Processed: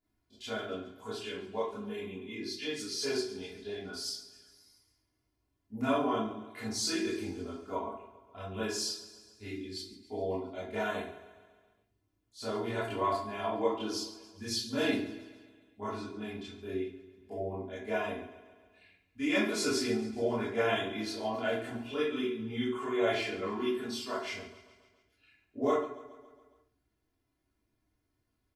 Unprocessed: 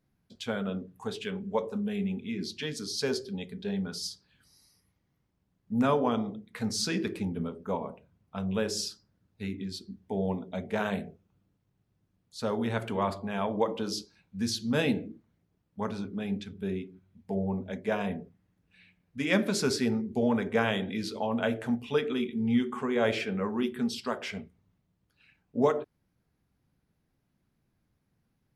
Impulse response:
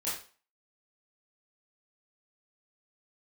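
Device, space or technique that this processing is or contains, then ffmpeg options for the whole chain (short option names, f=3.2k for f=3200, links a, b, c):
microphone above a desk: -filter_complex "[0:a]aecho=1:1:2.9:0.87[a];[1:a]atrim=start_sample=2205[b];[a][b]afir=irnorm=-1:irlink=0,aecho=1:1:138|276|414|552|690|828:0.15|0.0883|0.0521|0.0307|0.0181|0.0107,volume=-8dB"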